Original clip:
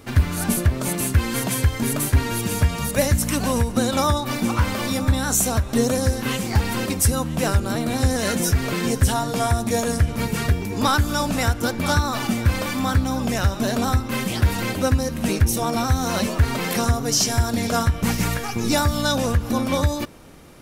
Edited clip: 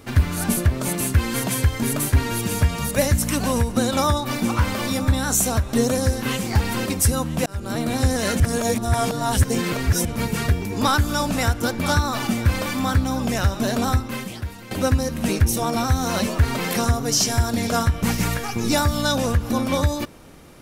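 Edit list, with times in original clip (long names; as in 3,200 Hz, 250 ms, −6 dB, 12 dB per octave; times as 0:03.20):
0:07.46–0:07.80: fade in
0:08.40–0:10.05: reverse
0:13.95–0:14.71: fade out quadratic, to −16 dB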